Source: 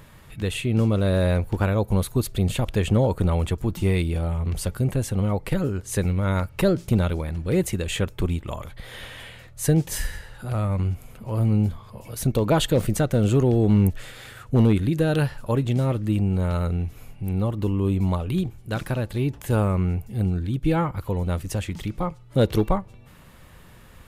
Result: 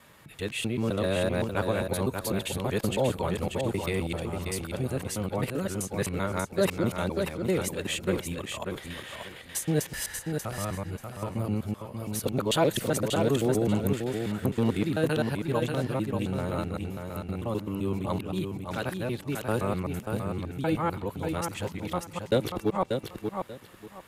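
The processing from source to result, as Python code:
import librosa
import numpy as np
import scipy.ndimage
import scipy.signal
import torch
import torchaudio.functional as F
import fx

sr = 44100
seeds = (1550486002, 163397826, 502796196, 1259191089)

p1 = fx.local_reverse(x, sr, ms=129.0)
p2 = fx.highpass(p1, sr, hz=310.0, slope=6)
p3 = p2 + fx.echo_feedback(p2, sr, ms=587, feedback_pct=22, wet_db=-5.5, dry=0)
y = p3 * 10.0 ** (-2.0 / 20.0)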